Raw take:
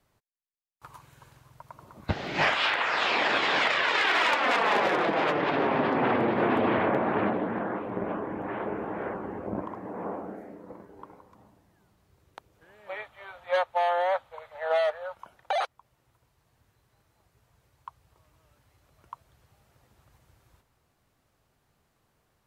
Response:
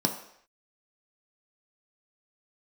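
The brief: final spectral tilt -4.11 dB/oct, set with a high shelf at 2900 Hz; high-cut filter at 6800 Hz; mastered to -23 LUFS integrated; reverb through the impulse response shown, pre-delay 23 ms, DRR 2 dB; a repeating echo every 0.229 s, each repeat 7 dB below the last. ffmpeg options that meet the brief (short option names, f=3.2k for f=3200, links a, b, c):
-filter_complex "[0:a]lowpass=6.8k,highshelf=f=2.9k:g=-7,aecho=1:1:229|458|687|916|1145:0.447|0.201|0.0905|0.0407|0.0183,asplit=2[a][b];[1:a]atrim=start_sample=2205,adelay=23[c];[b][c]afir=irnorm=-1:irlink=0,volume=-11dB[d];[a][d]amix=inputs=2:normalize=0"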